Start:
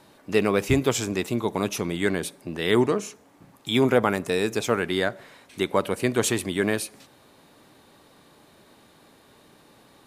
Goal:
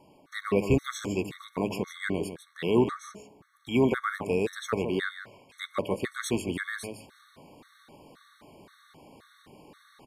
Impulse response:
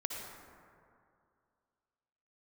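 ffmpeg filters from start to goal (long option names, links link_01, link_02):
-filter_complex "[0:a]areverse,acompressor=mode=upward:threshold=-41dB:ratio=2.5,areverse,highshelf=frequency=3800:gain=-7,bandreject=frequency=105.7:width_type=h:width=4,bandreject=frequency=211.4:width_type=h:width=4,bandreject=frequency=317.1:width_type=h:width=4,bandreject=frequency=422.8:width_type=h:width=4,bandreject=frequency=528.5:width_type=h:width=4,bandreject=frequency=634.2:width_type=h:width=4,asplit=2[link_01][link_02];[link_02]asetrate=22050,aresample=44100,atempo=2,volume=-17dB[link_03];[link_01][link_03]amix=inputs=2:normalize=0,aecho=1:1:153:0.316,afftfilt=real='re*gt(sin(2*PI*1.9*pts/sr)*(1-2*mod(floor(b*sr/1024/1100),2)),0)':imag='im*gt(sin(2*PI*1.9*pts/sr)*(1-2*mod(floor(b*sr/1024/1100),2)),0)':win_size=1024:overlap=0.75,volume=-2dB"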